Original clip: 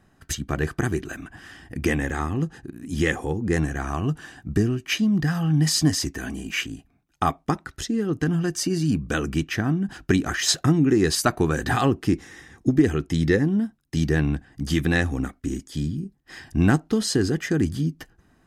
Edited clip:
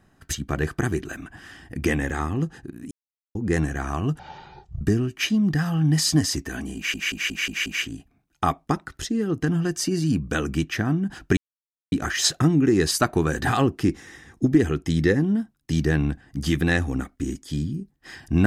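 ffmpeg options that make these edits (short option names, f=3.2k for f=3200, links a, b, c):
-filter_complex "[0:a]asplit=11[a][b][c][d][e][f][g][h][i][j][k];[a]atrim=end=2.91,asetpts=PTS-STARTPTS,afade=t=out:st=2.906:d=0.004:c=hsin[l];[b]atrim=start=2.91:end=3.35,asetpts=PTS-STARTPTS,volume=0[m];[c]atrim=start=3.35:end=4.194,asetpts=PTS-STARTPTS,afade=t=in:d=0.004:c=hsin[n];[d]atrim=start=4.19:end=4.5,asetpts=PTS-STARTPTS,asetrate=22050,aresample=44100[o];[e]atrim=start=4.496:end=6.632[p];[f]atrim=start=6.448:end=6.632[q];[g]atrim=start=6.448:end=6.632[r];[h]atrim=start=6.448:end=6.632[s];[i]atrim=start=6.448:end=6.632[t];[j]atrim=start=6.448:end=10.16,asetpts=PTS-STARTPTS,afade=t=out:st=3.708:d=0.004:c=hsin,apad=pad_dur=0.55[u];[k]atrim=start=10.16,asetpts=PTS-STARTPTS,afade=t=in:d=0.004:c=hsin[v];[l][m][n]concat=n=3:v=0:a=1[w];[w][o]acrossfade=d=0.004:c1=hsin:c2=hsin[x];[x][p]acrossfade=d=0.004:c1=hsin:c2=hsin[y];[y][q]acrossfade=d=0.004:c1=hsin:c2=hsin[z];[z][r]acrossfade=d=0.004:c1=hsin:c2=hsin[aa];[aa][s]acrossfade=d=0.004:c1=hsin:c2=hsin[ab];[ab][t]acrossfade=d=0.004:c1=hsin:c2=hsin[ac];[u][v]concat=n=2:v=0:a=1[ad];[ac][ad]acrossfade=d=0.004:c1=hsin:c2=hsin"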